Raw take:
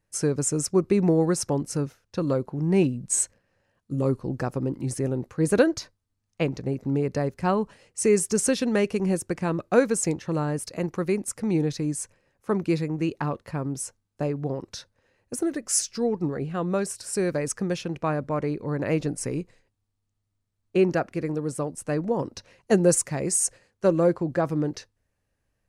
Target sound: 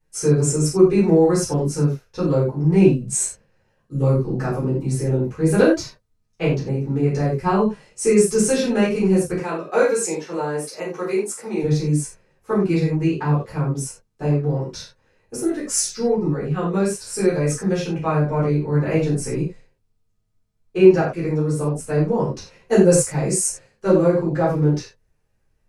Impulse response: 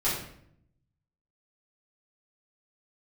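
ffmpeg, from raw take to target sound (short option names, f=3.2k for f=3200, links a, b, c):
-filter_complex "[0:a]asettb=1/sr,asplit=3[a][b][c];[a]atrim=end=9.384[d];[b]atrim=start=9.38:end=11.63,asetpts=PTS-STARTPTS,afade=t=in:d=0.004:c=qsin,afade=t=out:st=2.246:d=0.004:c=qsin,highpass=390[e];[c]atrim=start=11.626[f];[d][e]acrossfade=d=0.004:c1=hsin:c2=qsin[g];[g][f]acrossfade=d=0.004:c1=qsin:c2=hsin[h];[1:a]atrim=start_sample=2205,afade=t=out:st=0.17:d=0.01,atrim=end_sample=7938,asetrate=48510,aresample=44100[i];[h][i]afir=irnorm=-1:irlink=0,volume=-4.5dB"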